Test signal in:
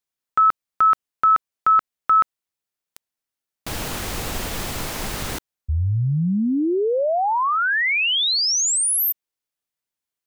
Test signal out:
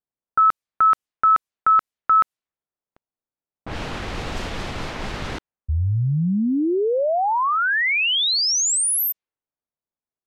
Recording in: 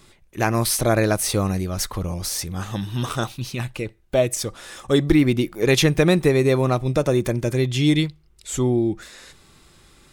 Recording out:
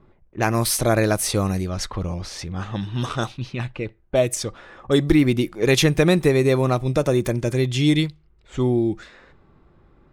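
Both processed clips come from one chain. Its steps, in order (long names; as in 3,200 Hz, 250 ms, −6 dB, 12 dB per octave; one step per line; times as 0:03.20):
low-pass that shuts in the quiet parts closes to 940 Hz, open at −17.5 dBFS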